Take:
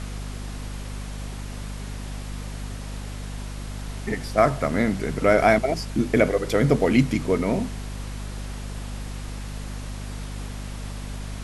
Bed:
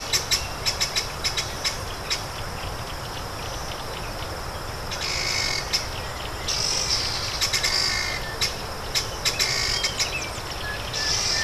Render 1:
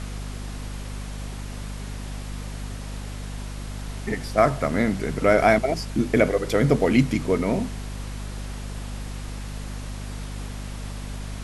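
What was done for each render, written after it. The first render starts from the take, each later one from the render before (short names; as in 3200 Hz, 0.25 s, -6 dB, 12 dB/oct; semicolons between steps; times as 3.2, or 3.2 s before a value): nothing audible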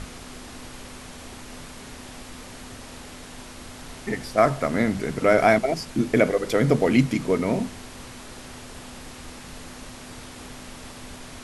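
notches 50/100/150/200 Hz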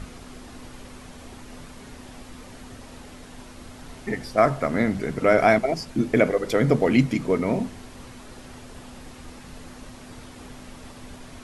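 denoiser 6 dB, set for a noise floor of -42 dBFS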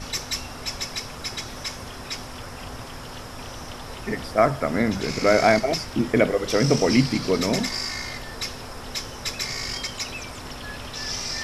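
add bed -6.5 dB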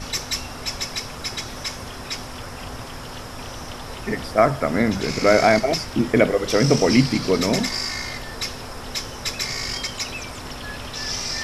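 gain +2.5 dB; limiter -3 dBFS, peak gain reduction 2 dB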